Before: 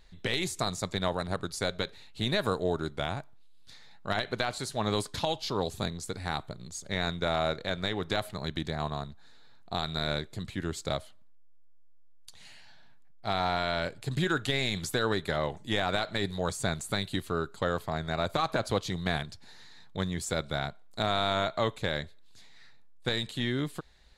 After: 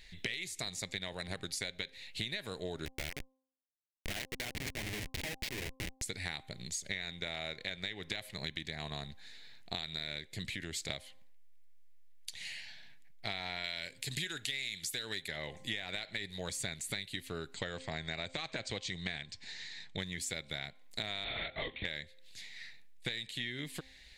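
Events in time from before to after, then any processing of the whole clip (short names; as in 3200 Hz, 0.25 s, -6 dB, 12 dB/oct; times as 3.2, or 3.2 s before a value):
2.85–6.02 Schmitt trigger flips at -31.5 dBFS
10.48–10.89 compressor 3:1, threshold -37 dBFS
13.64–15.28 high shelf 3200 Hz +11 dB
17.54–19.97 brick-wall FIR low-pass 8900 Hz
21.24–21.85 LPC vocoder at 8 kHz whisper
whole clip: resonant high shelf 1600 Hz +8 dB, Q 3; de-hum 262.3 Hz, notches 4; compressor 10:1, threshold -34 dBFS; gain -1.5 dB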